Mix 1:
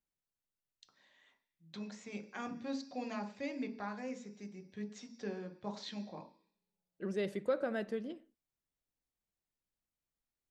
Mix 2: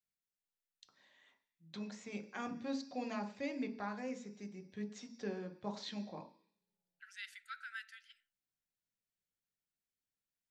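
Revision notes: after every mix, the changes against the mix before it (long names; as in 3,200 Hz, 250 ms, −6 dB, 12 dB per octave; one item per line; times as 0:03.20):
second voice: add linear-phase brick-wall high-pass 1,300 Hz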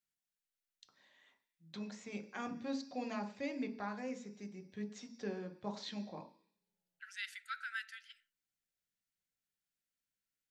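second voice +4.5 dB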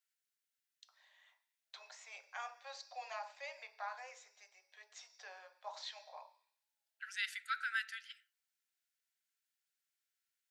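second voice +4.5 dB
master: add Butterworth high-pass 630 Hz 48 dB per octave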